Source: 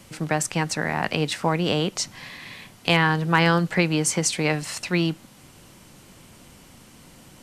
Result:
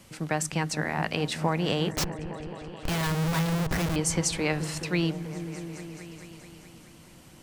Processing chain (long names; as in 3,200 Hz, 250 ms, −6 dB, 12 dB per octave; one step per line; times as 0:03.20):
0:01.91–0:03.96: comparator with hysteresis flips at −27.5 dBFS
echo whose low-pass opens from repeat to repeat 214 ms, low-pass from 200 Hz, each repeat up 1 octave, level −6 dB
level −4.5 dB